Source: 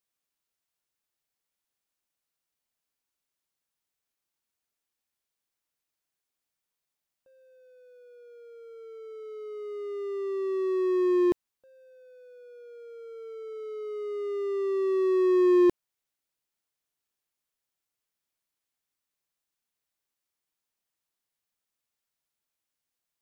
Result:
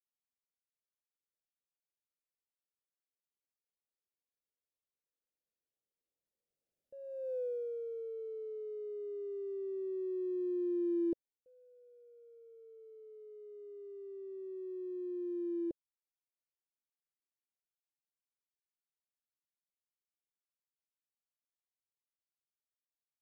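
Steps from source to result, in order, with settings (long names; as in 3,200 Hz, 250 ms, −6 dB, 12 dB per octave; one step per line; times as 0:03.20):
source passing by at 0:07.37, 16 m/s, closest 3.3 metres
low shelf with overshoot 740 Hz +11.5 dB, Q 3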